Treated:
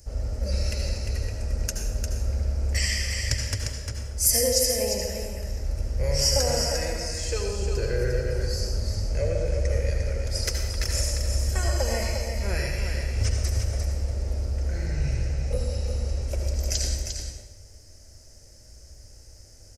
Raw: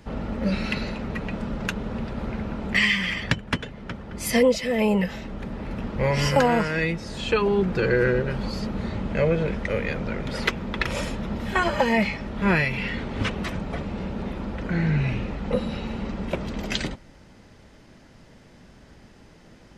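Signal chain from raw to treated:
drawn EQ curve 100 Hz 0 dB, 170 Hz −25 dB, 590 Hz −9 dB, 1,000 Hz −23 dB, 1,500 Hz −17 dB, 2,500 Hz −16 dB, 3,600 Hz −19 dB, 5,200 Hz +7 dB
single-tap delay 351 ms −6.5 dB
on a send at −2 dB: convolution reverb RT60 0.95 s, pre-delay 67 ms
on the sum: level +3.5 dB

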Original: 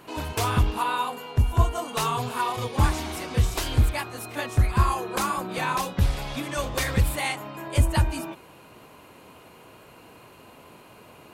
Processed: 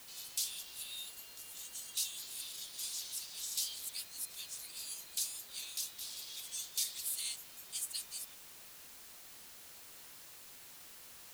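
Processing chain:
inverse Chebyshev high-pass filter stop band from 1,200 Hz, stop band 60 dB
background noise white −53 dBFS
level −1.5 dB

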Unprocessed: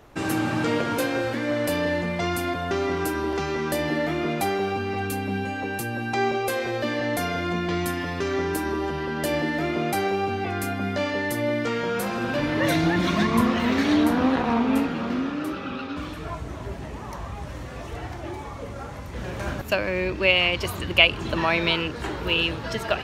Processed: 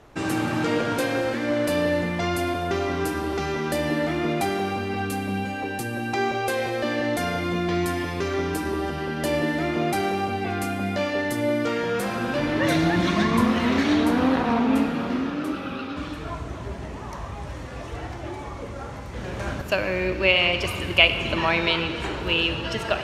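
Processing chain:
low-pass filter 11,000 Hz 12 dB per octave
on a send: convolution reverb RT60 2.2 s, pre-delay 32 ms, DRR 8.5 dB

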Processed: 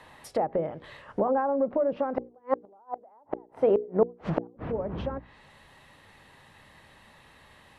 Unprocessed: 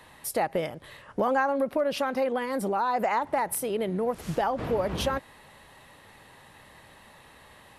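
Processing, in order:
treble cut that deepens with the level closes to 800 Hz, closed at −24 dBFS
parametric band 670 Hz +2 dB 2.3 octaves, from 0:02.18 +13 dB, from 0:04.47 −4 dB
gate with flip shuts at −12 dBFS, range −38 dB
high-shelf EQ 7,500 Hz −10 dB
mains-hum notches 60/120/180/240/300/360/420/480 Hz

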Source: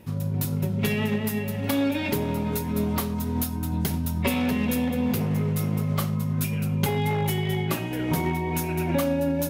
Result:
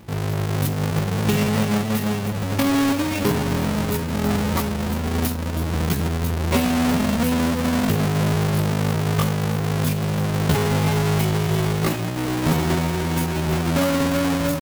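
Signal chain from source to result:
each half-wave held at its own peak
tempo change 0.65×

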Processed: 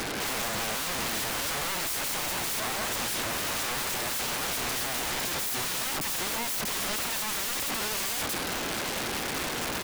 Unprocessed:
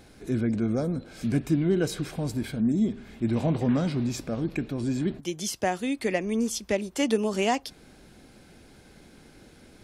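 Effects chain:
single-tap delay 640 ms −5.5 dB
mid-hump overdrive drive 33 dB, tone 1,600 Hz, clips at −11 dBFS
wrap-around overflow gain 28 dB
level +2 dB

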